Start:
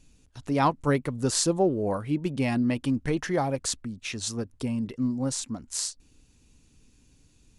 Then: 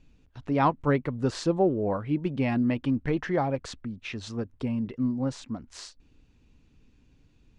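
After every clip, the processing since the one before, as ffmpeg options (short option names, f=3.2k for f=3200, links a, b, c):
-af "lowpass=2.9k"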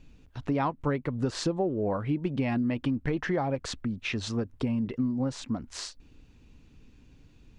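-af "acompressor=threshold=-30dB:ratio=6,volume=5dB"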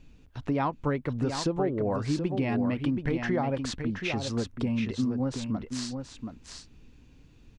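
-af "aecho=1:1:727:0.447"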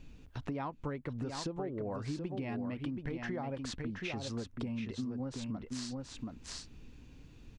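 -af "acompressor=threshold=-40dB:ratio=3,volume=1dB"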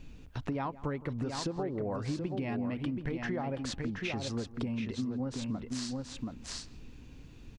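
-filter_complex "[0:a]asplit=2[a][b];[b]adelay=167,lowpass=f=2.2k:p=1,volume=-18dB,asplit=2[c][d];[d]adelay=167,lowpass=f=2.2k:p=1,volume=0.38,asplit=2[e][f];[f]adelay=167,lowpass=f=2.2k:p=1,volume=0.38[g];[a][c][e][g]amix=inputs=4:normalize=0,volume=3.5dB"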